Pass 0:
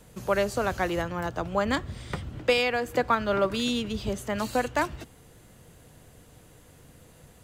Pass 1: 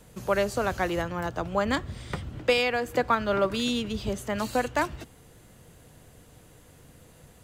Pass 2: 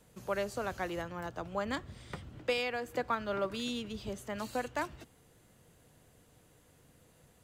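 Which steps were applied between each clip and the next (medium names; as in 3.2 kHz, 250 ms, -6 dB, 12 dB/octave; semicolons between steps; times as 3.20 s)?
no audible change
bass shelf 83 Hz -5.5 dB; trim -9 dB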